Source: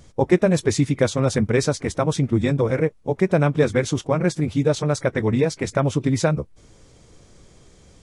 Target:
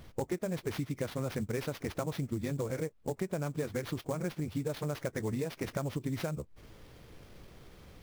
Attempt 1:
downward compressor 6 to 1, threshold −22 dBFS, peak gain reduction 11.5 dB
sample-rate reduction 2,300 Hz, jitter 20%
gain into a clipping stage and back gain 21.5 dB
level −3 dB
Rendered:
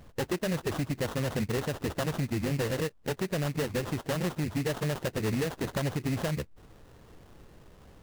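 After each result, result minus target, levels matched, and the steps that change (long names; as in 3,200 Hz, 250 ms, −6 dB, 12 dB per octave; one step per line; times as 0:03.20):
downward compressor: peak gain reduction −6 dB; sample-rate reduction: distortion +7 dB
change: downward compressor 6 to 1, threshold −29 dBFS, peak gain reduction 17.5 dB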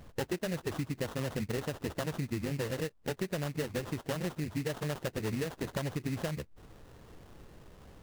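sample-rate reduction: distortion +7 dB
change: sample-rate reduction 7,900 Hz, jitter 20%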